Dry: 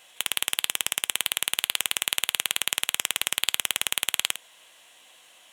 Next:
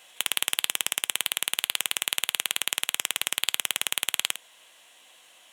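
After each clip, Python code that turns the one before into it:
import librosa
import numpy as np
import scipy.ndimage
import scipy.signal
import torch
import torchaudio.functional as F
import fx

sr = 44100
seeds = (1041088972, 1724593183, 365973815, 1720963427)

y = scipy.signal.sosfilt(scipy.signal.butter(2, 130.0, 'highpass', fs=sr, output='sos'), x)
y = fx.rider(y, sr, range_db=10, speed_s=2.0)
y = F.gain(torch.from_numpy(y), -1.0).numpy()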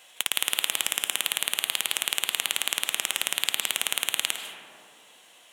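y = fx.rev_freeverb(x, sr, rt60_s=2.7, hf_ratio=0.25, predelay_ms=110, drr_db=6.0)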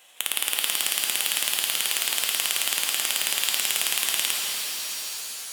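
y = fx.high_shelf(x, sr, hz=11000.0, db=6.0)
y = fx.rev_shimmer(y, sr, seeds[0], rt60_s=4.0, semitones=7, shimmer_db=-2, drr_db=1.0)
y = F.gain(torch.from_numpy(y), -2.0).numpy()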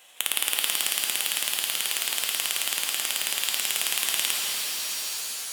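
y = fx.rider(x, sr, range_db=4, speed_s=2.0)
y = F.gain(torch.from_numpy(y), -1.5).numpy()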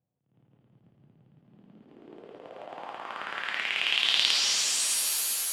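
y = fx.filter_sweep_lowpass(x, sr, from_hz=130.0, to_hz=12000.0, start_s=1.3, end_s=5.13, q=2.7)
y = fx.attack_slew(y, sr, db_per_s=110.0)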